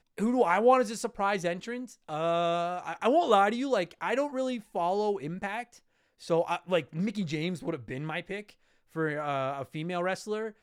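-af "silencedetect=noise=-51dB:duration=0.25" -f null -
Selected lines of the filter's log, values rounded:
silence_start: 5.79
silence_end: 6.20 | silence_duration: 0.41
silence_start: 8.53
silence_end: 8.93 | silence_duration: 0.40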